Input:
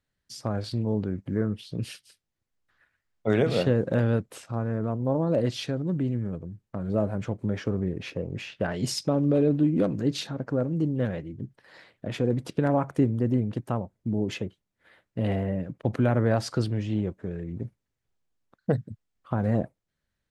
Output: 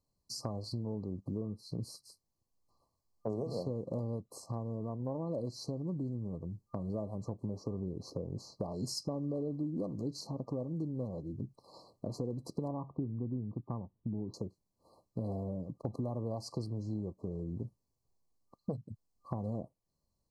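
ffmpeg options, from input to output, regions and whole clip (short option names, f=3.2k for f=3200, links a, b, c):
-filter_complex "[0:a]asettb=1/sr,asplit=3[a][b][c];[a]atrim=end=12.714[d];[b]atrim=start=12.71:end=14.34,asetpts=PTS-STARTPTS,afade=t=in:d=0.004:c=qsin,afade=t=out:st=1.626:d=0.004:c=qsin,lowpass=f=1.8k:w=0.5412,lowpass=f=1.8k:w=1.3066,equalizer=f=600:t=o:w=1.1:g=-8[e];[c]atrim=start=14.336[f];[d][e]acrossfade=d=0.004:c1=hsin:c2=qsin[g];[g][f]acrossfade=d=0.004:c1=qsin:c2=hsin,afftfilt=real='re*(1-between(b*sr/4096,1200,4000))':imag='im*(1-between(b*sr/4096,1200,4000))':win_size=4096:overlap=0.75,equalizer=f=1.9k:t=o:w=0.56:g=12,acompressor=threshold=-36dB:ratio=4"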